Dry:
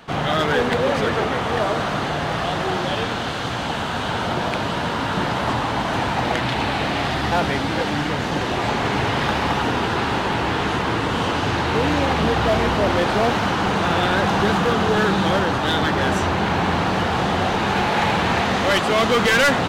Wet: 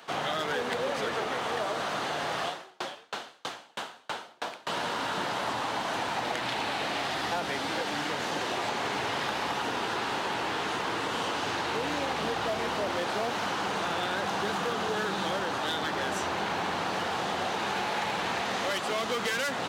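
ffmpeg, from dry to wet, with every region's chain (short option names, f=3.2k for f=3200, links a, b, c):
-filter_complex "[0:a]asettb=1/sr,asplit=3[a][b][c];[a]atrim=end=2.484[d];[b]atrim=start=2.48:end=4.67,asetpts=PTS-STARTPTS,afade=t=in:d=0.004:c=qsin,afade=t=out:st=2.186:d=0.004:c=qsin,highpass=f=170:p=1,aeval=exprs='val(0)*pow(10,-38*if(lt(mod(3.1*n/s,1),2*abs(3.1)/1000),1-mod(3.1*n/s,1)/(2*abs(3.1)/1000),(mod(3.1*n/s,1)-2*abs(3.1)/1000)/(1-2*abs(3.1)/1000))/20)':c=same[e];[c]atrim=start=4.666[f];[d][e]acrossfade=d=0.004:c1=hsin:c2=qsin[g];[g][f]acrossfade=d=0.004:c1=qsin:c2=hsin,highpass=90,bass=f=250:g=-15,treble=f=4k:g=5,acrossover=split=220[h][i];[i]acompressor=threshold=-24dB:ratio=4[j];[h][j]amix=inputs=2:normalize=0,volume=-4.5dB"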